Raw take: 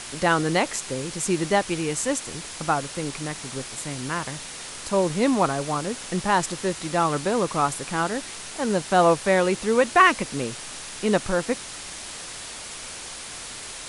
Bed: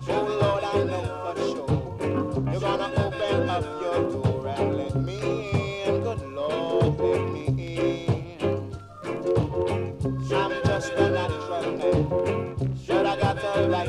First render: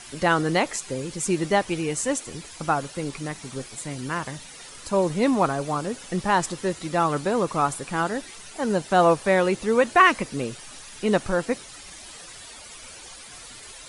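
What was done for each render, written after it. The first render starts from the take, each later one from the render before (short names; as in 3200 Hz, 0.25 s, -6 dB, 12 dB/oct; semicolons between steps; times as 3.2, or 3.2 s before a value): denoiser 11 dB, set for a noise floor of -38 dBFS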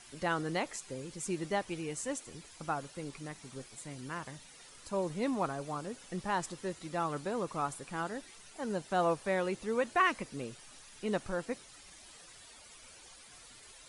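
gain -12 dB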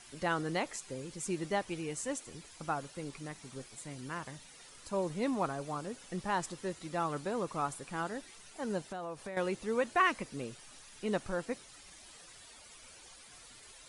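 8.89–9.37 compressor, threshold -38 dBFS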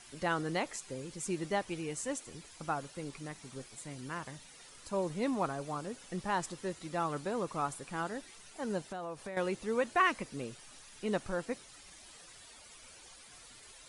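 nothing audible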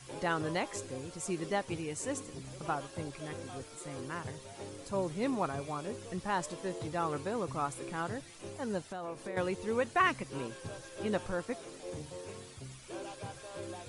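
add bed -21 dB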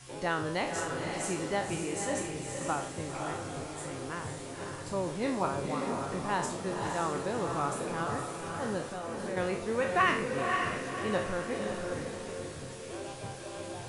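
spectral trails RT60 0.49 s; on a send: diffused feedback echo 0.536 s, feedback 42%, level -3.5 dB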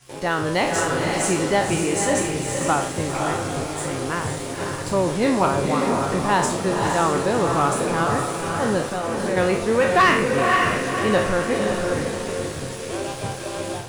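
AGC gain up to 5 dB; sample leveller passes 2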